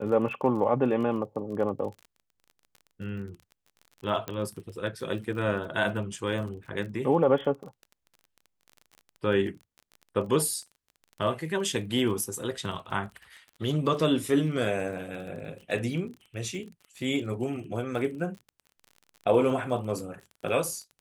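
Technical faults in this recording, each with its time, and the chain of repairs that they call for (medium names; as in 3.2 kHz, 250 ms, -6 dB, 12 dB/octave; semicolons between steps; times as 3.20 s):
crackle 29 per s -38 dBFS
4.28 s: pop -18 dBFS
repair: de-click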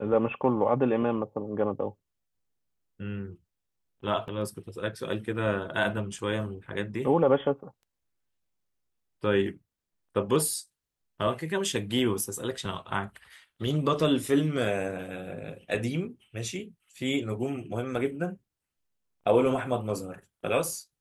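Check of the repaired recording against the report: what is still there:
4.28 s: pop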